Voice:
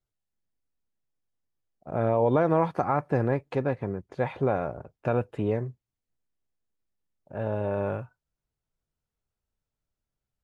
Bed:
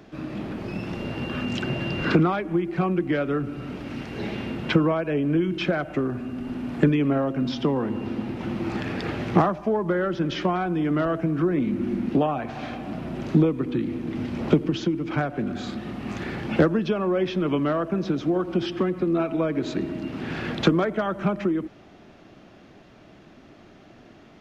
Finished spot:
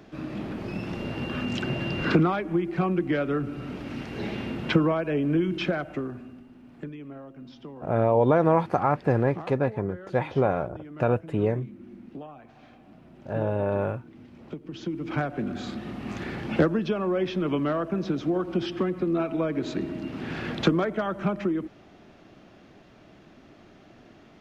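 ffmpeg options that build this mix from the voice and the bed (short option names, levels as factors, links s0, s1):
-filter_complex "[0:a]adelay=5950,volume=1.33[s0];[1:a]volume=5.62,afade=t=out:st=5.56:d=0.92:silence=0.133352,afade=t=in:st=14.63:d=0.51:silence=0.149624[s1];[s0][s1]amix=inputs=2:normalize=0"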